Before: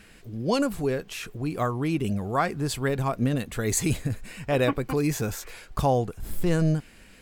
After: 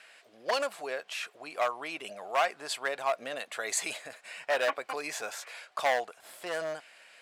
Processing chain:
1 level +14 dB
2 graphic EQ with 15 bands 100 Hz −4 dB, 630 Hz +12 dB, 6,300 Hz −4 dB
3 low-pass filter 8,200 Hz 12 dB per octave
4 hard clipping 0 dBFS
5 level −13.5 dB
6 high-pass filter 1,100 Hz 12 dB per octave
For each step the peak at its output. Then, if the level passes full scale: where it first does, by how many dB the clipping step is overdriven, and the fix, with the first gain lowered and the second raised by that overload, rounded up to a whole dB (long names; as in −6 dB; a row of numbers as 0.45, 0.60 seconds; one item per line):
+3.0, +9.0, +9.0, 0.0, −13.5, −14.5 dBFS
step 1, 9.0 dB
step 1 +5 dB, step 5 −4.5 dB